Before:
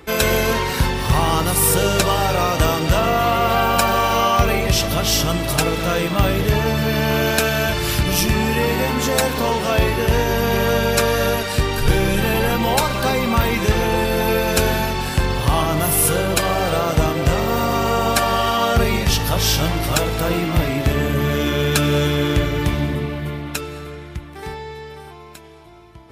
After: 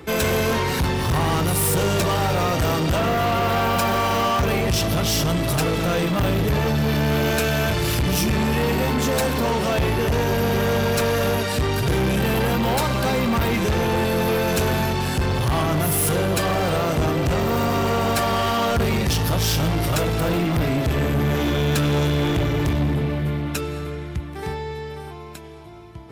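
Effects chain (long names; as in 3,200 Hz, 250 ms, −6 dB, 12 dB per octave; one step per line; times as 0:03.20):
high-pass filter 61 Hz 24 dB per octave
low-shelf EQ 410 Hz +6 dB
soft clipping −17 dBFS, distortion −9 dB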